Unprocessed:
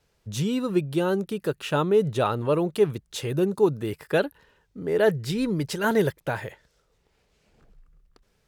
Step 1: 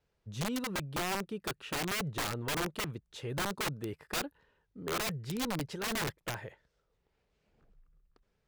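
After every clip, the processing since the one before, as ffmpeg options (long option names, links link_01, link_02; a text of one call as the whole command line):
ffmpeg -i in.wav -af "aemphasis=mode=reproduction:type=50kf,aeval=exprs='(mod(9.44*val(0)+1,2)-1)/9.44':channel_layout=same,volume=-9dB" out.wav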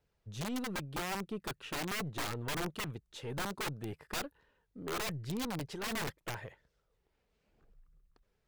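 ffmpeg -i in.wav -af "aphaser=in_gain=1:out_gain=1:delay=4.6:decay=0.25:speed=0.75:type=triangular,aeval=exprs='(tanh(39.8*val(0)+0.4)-tanh(0.4))/39.8':channel_layout=same" out.wav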